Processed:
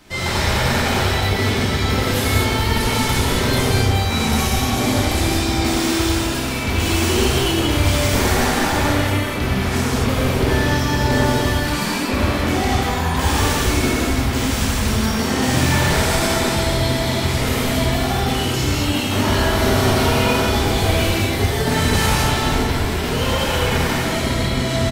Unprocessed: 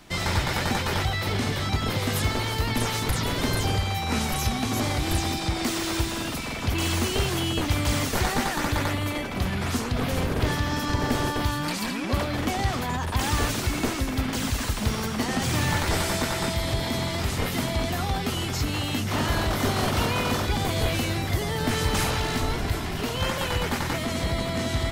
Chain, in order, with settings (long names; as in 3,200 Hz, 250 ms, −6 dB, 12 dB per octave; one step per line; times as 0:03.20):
far-end echo of a speakerphone 280 ms, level −13 dB
reverb whose tail is shaped and stops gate 280 ms flat, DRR −7 dB